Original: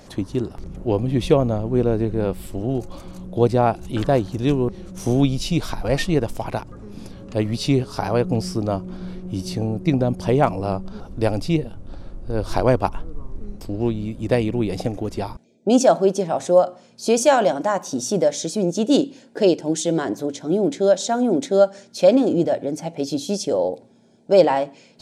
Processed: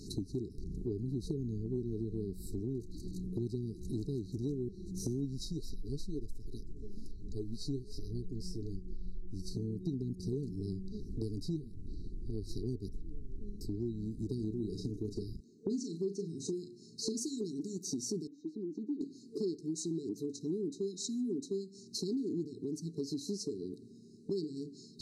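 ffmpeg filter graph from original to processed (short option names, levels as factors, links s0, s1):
-filter_complex "[0:a]asettb=1/sr,asplit=3[s0][s1][s2];[s0]atrim=end=5.454[s3];[s1]atrim=start=5.45:end=9.55,asetpts=PTS-STARTPTS,afade=t=in:d=0.004:c=qsin,afade=t=out:st=4.096:d=0.004:c=qsin,asubboost=boost=8:cutoff=59,flanger=delay=0.2:depth=7.4:regen=51:speed=1.1:shape=triangular[s4];[s2]atrim=start=9.546[s5];[s3][s4]acrossfade=d=0.004:c1=hsin:c2=qsin[s6];[s6][s5]acrossfade=d=0.004:c1=qsin:c2=hsin,asettb=1/sr,asplit=3[s7][s8][s9];[s7]atrim=end=14.354[s10];[s8]atrim=start=14.35:end=17.17,asetpts=PTS-STARTPTS,afade=t=in:d=0.004:c=qsin,afade=t=out:st=2.816:d=0.004:c=qsin,acrossover=split=8200[s11][s12];[s12]acompressor=threshold=0.00126:ratio=4:attack=1:release=60[s13];[s11][s13]amix=inputs=2:normalize=0,asplit=2[s14][s15];[s15]adelay=37,volume=0.376[s16];[s14][s16]amix=inputs=2:normalize=0,atrim=end_sample=124362[s17];[s9]atrim=start=17.166[s18];[s10][s17]acrossfade=d=0.004:c1=hsin:c2=qsin[s19];[s19][s18]acrossfade=d=0.004:c1=qsin:c2=hsin,asettb=1/sr,asplit=3[s20][s21][s22];[s20]atrim=end=18.274[s23];[s21]atrim=start=18.27:end=19.01,asetpts=PTS-STARTPTS,afade=t=in:d=0.004:c=qsin,afade=t=out:st=0.736:d=0.004:c=qsin,acrossover=split=250|630|7700[s24][s25][s26][s27];[s24]acompressor=threshold=0.0224:ratio=3[s28];[s25]acompressor=threshold=0.1:ratio=3[s29];[s26]acompressor=threshold=0.0158:ratio=3[s30];[s27]acompressor=threshold=0.00224:ratio=3[s31];[s28][s29][s30][s31]amix=inputs=4:normalize=0,asplit=3[s32][s33][s34];[s32]bandpass=f=300:t=q:w=8,volume=1[s35];[s33]bandpass=f=870:t=q:w=8,volume=0.501[s36];[s34]bandpass=f=2240:t=q:w=8,volume=0.355[s37];[s35][s36][s37]amix=inputs=3:normalize=0,asubboost=boost=9.5:cutoff=190[s38];[s22]atrim=start=19.006[s39];[s23][s38]acrossfade=d=0.004:c1=hsin:c2=qsin[s40];[s40][s39]acrossfade=d=0.004:c1=qsin:c2=hsin,afftfilt=real='re*(1-between(b*sr/4096,450,3800))':imag='im*(1-between(b*sr/4096,450,3800))':win_size=4096:overlap=0.75,highshelf=f=9100:g=-5,acompressor=threshold=0.0141:ratio=4"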